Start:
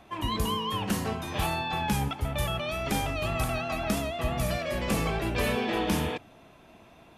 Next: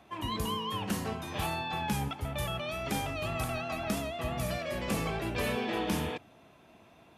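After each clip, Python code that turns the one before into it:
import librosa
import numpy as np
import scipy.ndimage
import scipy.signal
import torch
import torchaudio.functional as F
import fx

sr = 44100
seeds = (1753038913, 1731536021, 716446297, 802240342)

y = scipy.signal.sosfilt(scipy.signal.butter(2, 64.0, 'highpass', fs=sr, output='sos'), x)
y = y * 10.0 ** (-4.0 / 20.0)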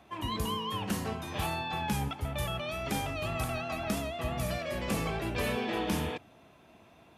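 y = fx.peak_eq(x, sr, hz=69.0, db=2.5, octaves=0.77)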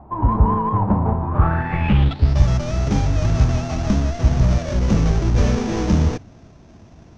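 y = fx.halfwave_hold(x, sr)
y = fx.filter_sweep_lowpass(y, sr, from_hz=940.0, to_hz=6000.0, start_s=1.24, end_s=2.41, q=5.6)
y = fx.riaa(y, sr, side='playback')
y = y * 10.0 ** (1.0 / 20.0)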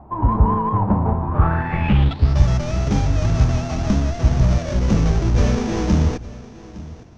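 y = x + 10.0 ** (-18.5 / 20.0) * np.pad(x, (int(861 * sr / 1000.0), 0))[:len(x)]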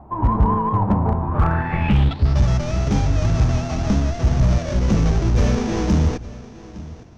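y = np.clip(x, -10.0 ** (-9.5 / 20.0), 10.0 ** (-9.5 / 20.0))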